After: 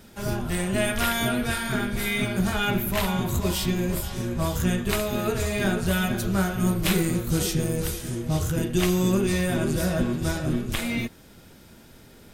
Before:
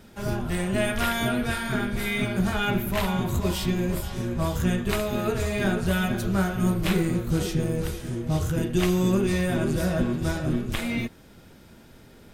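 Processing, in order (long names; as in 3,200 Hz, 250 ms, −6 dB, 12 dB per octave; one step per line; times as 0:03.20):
high-shelf EQ 4,200 Hz +6 dB, from 0:06.85 +11 dB, from 0:08.27 +6 dB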